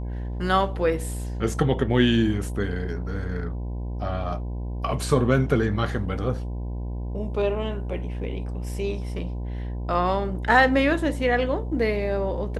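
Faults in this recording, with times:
buzz 60 Hz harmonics 17 -30 dBFS

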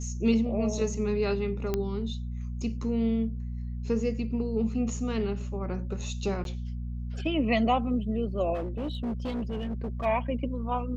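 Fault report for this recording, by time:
hum 60 Hz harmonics 4 -34 dBFS
1.74 s: pop -15 dBFS
6.44–6.45 s: dropout 12 ms
8.54–10.06 s: clipped -28 dBFS

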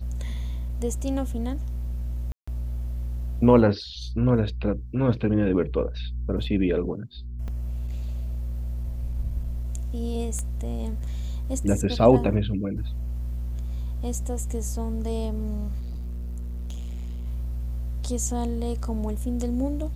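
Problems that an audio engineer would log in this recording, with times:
2.32–2.48 s: dropout 155 ms
7.48 s: dropout 3.3 ms
10.39 s: pop -19 dBFS
15.79–17.27 s: clipped -30 dBFS

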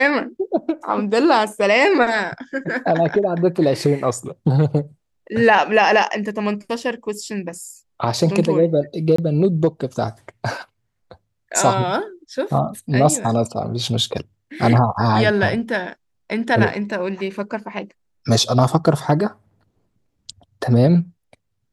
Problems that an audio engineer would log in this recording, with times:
9.16–9.18 s: dropout 24 ms

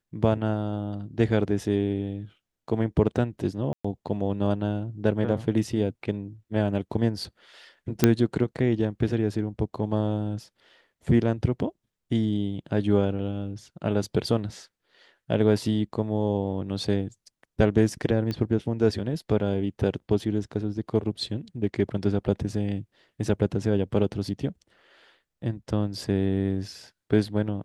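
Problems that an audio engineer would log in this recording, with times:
3.73–3.85 s: dropout 115 ms
8.04 s: pop -3 dBFS
18.31 s: pop -18 dBFS

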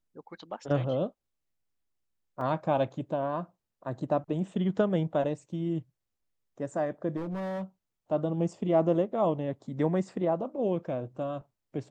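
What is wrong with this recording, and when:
2.41 s: dropout 2.3 ms
7.16–7.63 s: clipped -31 dBFS

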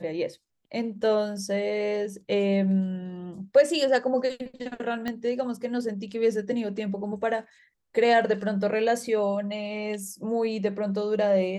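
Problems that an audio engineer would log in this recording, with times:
5.08 s: pop -17 dBFS

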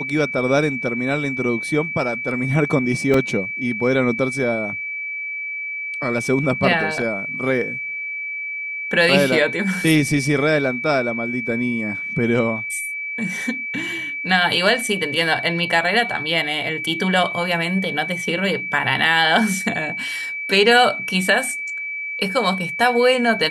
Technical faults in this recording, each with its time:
whine 2.3 kHz -25 dBFS
3.14 s: dropout 2.5 ms

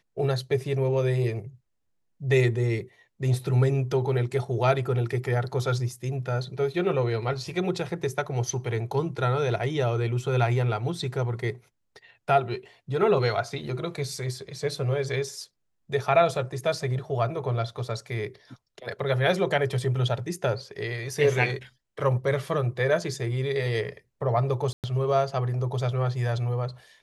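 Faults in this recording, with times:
24.73–24.84 s: dropout 108 ms

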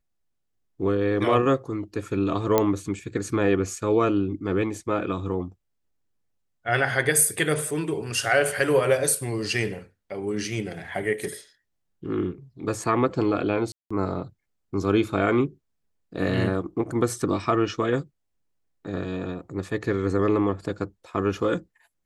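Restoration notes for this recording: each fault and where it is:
2.58 s: pop -6 dBFS
13.72–13.90 s: dropout 185 ms

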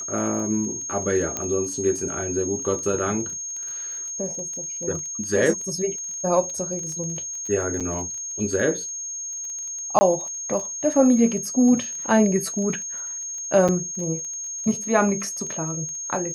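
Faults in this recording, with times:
crackle 20 per s -31 dBFS
whine 6.5 kHz -29 dBFS
1.37 s: pop -11 dBFS
7.80–7.81 s: dropout 6.5 ms
9.99–10.01 s: dropout 20 ms
13.68–13.69 s: dropout 6.1 ms

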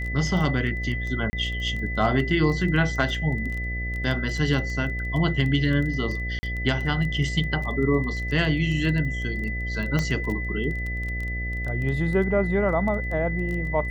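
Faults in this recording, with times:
buzz 60 Hz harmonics 12 -30 dBFS
crackle 11 per s -29 dBFS
whine 2 kHz -31 dBFS
1.30–1.33 s: dropout 30 ms
6.39–6.43 s: dropout 40 ms
9.99 s: pop -12 dBFS

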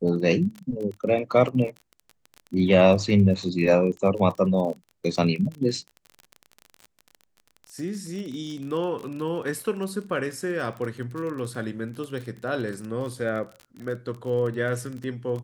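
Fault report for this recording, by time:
crackle 32 per s -32 dBFS

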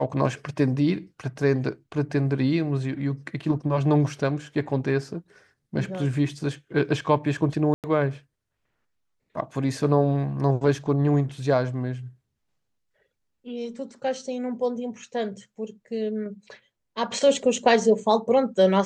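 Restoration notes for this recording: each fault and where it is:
7.74–7.84 s: dropout 98 ms

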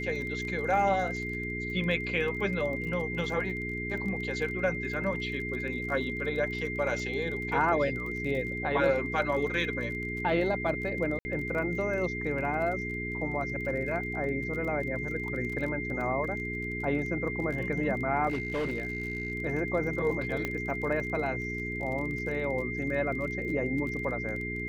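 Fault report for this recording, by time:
crackle 29 per s -37 dBFS
hum 60 Hz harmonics 7 -37 dBFS
whine 2.1 kHz -35 dBFS
11.19–11.25 s: dropout 60 ms
18.28–19.32 s: clipped -27 dBFS
20.45 s: pop -17 dBFS

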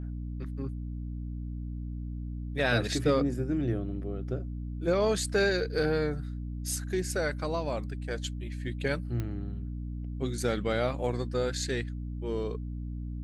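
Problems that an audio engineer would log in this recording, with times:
hum 60 Hz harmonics 5 -36 dBFS
9.20 s: pop -21 dBFS

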